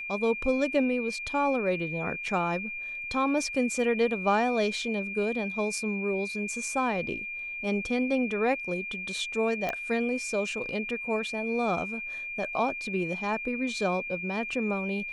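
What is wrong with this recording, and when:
tone 2400 Hz -34 dBFS
9.69 pop -17 dBFS

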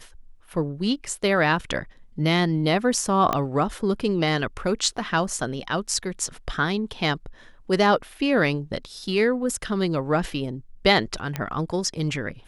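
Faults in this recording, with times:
3.33 pop -9 dBFS
11.36 pop -12 dBFS

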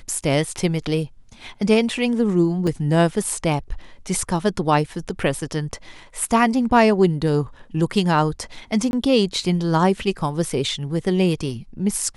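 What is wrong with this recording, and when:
2.67 gap 3.4 ms
8.91–8.93 gap 21 ms

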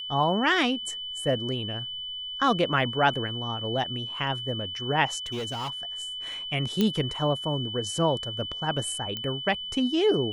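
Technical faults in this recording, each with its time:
tone 3000 Hz -33 dBFS
5.26–5.83 clipped -28.5 dBFS
6.81 pop -11 dBFS
9.17 pop -18 dBFS

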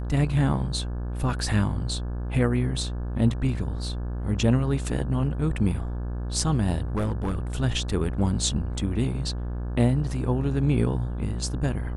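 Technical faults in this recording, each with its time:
buzz 60 Hz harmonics 29 -30 dBFS
6.96–7.47 clipped -22 dBFS

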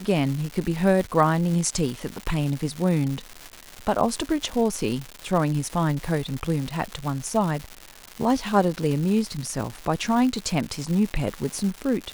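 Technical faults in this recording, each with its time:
crackle 320/s -28 dBFS

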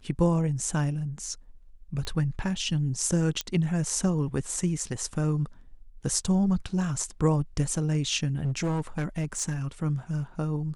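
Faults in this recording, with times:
2.05 pop -21 dBFS
3.41 pop -13 dBFS
8.35–9.55 clipped -23.5 dBFS

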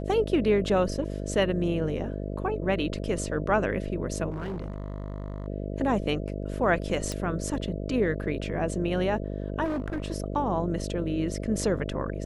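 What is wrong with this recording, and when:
buzz 50 Hz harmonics 13 -33 dBFS
4.3–5.48 clipped -29.5 dBFS
7.12 pop -18 dBFS
9.64–10.08 clipped -26 dBFS

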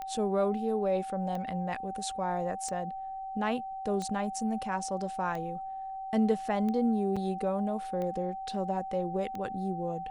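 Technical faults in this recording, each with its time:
tick 45 rpm -25 dBFS
tone 770 Hz -36 dBFS
7.16–7.17 gap 5.3 ms

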